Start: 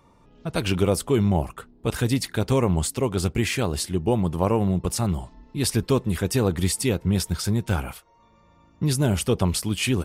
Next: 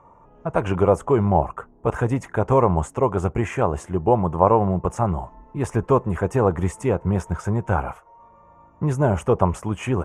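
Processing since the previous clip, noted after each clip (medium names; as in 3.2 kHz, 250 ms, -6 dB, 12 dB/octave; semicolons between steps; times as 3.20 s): FFT filter 150 Hz 0 dB, 250 Hz -3 dB, 590 Hz +7 dB, 1 kHz +10 dB, 2.8 kHz -10 dB, 4.4 kHz -30 dB, 6.5 kHz -8 dB, 15 kHz -28 dB; trim +1 dB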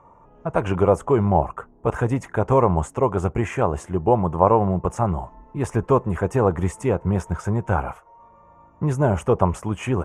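no audible change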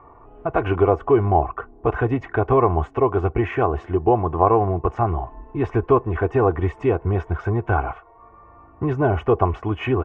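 low-pass 3.4 kHz 24 dB/octave; comb 2.7 ms, depth 69%; in parallel at +1 dB: compression, threshold -27 dBFS, peak gain reduction 16.5 dB; on the sum: trim -2.5 dB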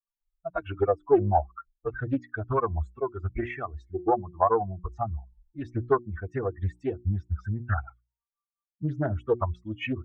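expander on every frequency bin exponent 3; hum notches 60/120/180/240/300/360 Hz; loudspeaker Doppler distortion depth 0.35 ms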